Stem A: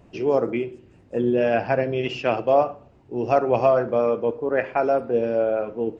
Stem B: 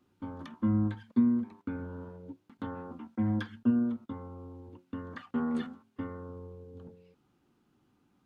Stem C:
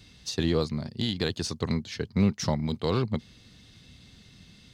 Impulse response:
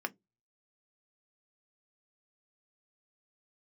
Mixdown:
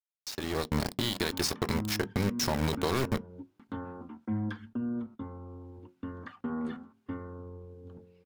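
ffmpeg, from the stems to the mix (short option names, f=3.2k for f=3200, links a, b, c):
-filter_complex "[1:a]alimiter=level_in=0.5dB:limit=-24dB:level=0:latency=1:release=68,volume=-0.5dB,adynamicequalizer=threshold=0.00158:dfrequency=1800:dqfactor=0.7:tfrequency=1800:tqfactor=0.7:attack=5:release=100:ratio=0.375:range=3:mode=cutabove:tftype=highshelf,adelay=1100,volume=-13.5dB,asplit=2[a][b];[b]volume=-14dB[c];[2:a]aemphasis=mode=production:type=cd,acompressor=threshold=-28dB:ratio=12,aeval=exprs='val(0)*gte(abs(val(0)),0.0237)':c=same,volume=-3.5dB,asplit=2[d][e];[e]volume=-10.5dB[f];[a][d]amix=inputs=2:normalize=0,aeval=exprs='0.0841*(abs(mod(val(0)/0.0841+3,4)-2)-1)':c=same,alimiter=level_in=8.5dB:limit=-24dB:level=0:latency=1:release=192,volume=-8.5dB,volume=0dB[g];[3:a]atrim=start_sample=2205[h];[c][f]amix=inputs=2:normalize=0[i];[i][h]afir=irnorm=-1:irlink=0[j];[g][j]amix=inputs=2:normalize=0,lowshelf=f=120:g=6,dynaudnorm=f=200:g=5:m=11dB"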